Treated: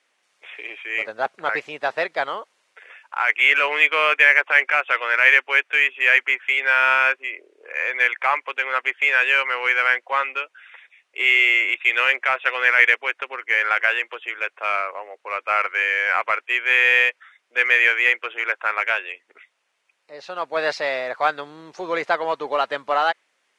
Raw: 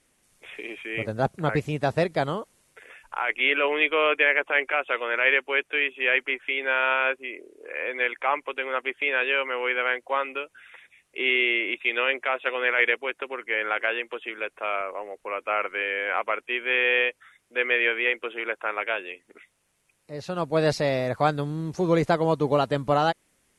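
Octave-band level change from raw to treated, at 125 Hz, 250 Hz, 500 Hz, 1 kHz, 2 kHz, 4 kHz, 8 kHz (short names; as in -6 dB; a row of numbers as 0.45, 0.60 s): under -20 dB, under -10 dB, -2.0 dB, +4.5 dB, +7.5 dB, +4.0 dB, n/a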